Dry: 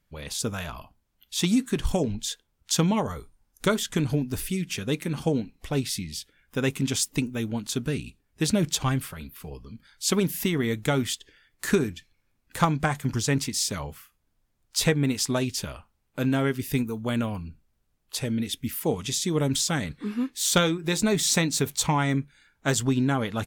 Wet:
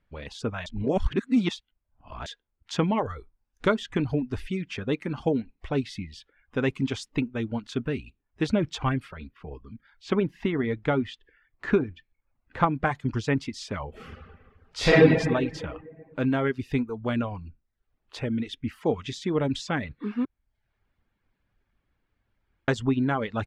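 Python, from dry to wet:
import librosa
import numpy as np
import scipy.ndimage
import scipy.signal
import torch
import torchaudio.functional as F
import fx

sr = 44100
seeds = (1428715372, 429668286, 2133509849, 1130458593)

y = fx.peak_eq(x, sr, hz=11000.0, db=-15.0, octaves=1.8, at=(9.28, 12.86))
y = fx.reverb_throw(y, sr, start_s=13.89, length_s=1.1, rt60_s=1.8, drr_db=-9.5)
y = fx.edit(y, sr, fx.reverse_span(start_s=0.66, length_s=1.6),
    fx.room_tone_fill(start_s=20.25, length_s=2.43), tone=tone)
y = fx.dereverb_blind(y, sr, rt60_s=0.54)
y = scipy.signal.sosfilt(scipy.signal.butter(2, 2500.0, 'lowpass', fs=sr, output='sos'), y)
y = fx.peak_eq(y, sr, hz=160.0, db=-5.0, octaves=0.62)
y = F.gain(torch.from_numpy(y), 1.5).numpy()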